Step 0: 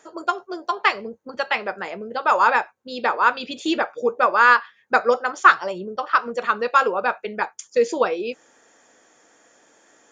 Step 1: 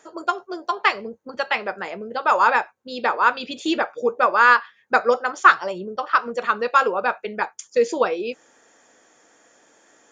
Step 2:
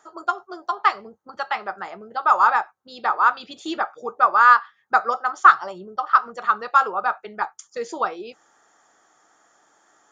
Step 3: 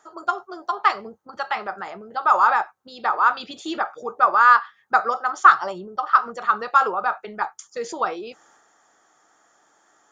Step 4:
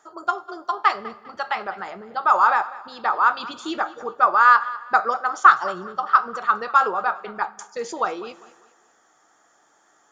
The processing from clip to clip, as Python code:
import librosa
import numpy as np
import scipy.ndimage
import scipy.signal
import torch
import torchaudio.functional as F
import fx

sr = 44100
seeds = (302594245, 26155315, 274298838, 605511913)

y1 = x
y2 = fx.graphic_eq_31(y1, sr, hz=(250, 500, 800, 1250, 2500), db=(-7, -8, 7, 10, -7))
y2 = y2 * 10.0 ** (-5.0 / 20.0)
y3 = fx.transient(y2, sr, attack_db=1, sustain_db=5)
y3 = y3 * 10.0 ** (-1.0 / 20.0)
y4 = fx.echo_feedback(y3, sr, ms=200, feedback_pct=34, wet_db=-18.5)
y4 = fx.rev_plate(y4, sr, seeds[0], rt60_s=1.5, hf_ratio=0.8, predelay_ms=0, drr_db=20.0)